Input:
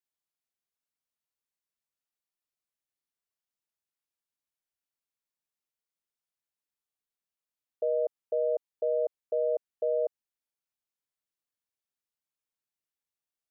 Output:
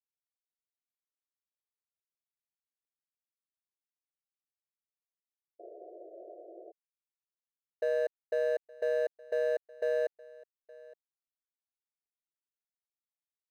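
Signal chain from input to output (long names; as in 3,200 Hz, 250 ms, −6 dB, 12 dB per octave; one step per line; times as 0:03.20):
running median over 41 samples
single-tap delay 867 ms −22 dB
sound drawn into the spectrogram noise, 0:05.59–0:06.72, 320–730 Hz −49 dBFS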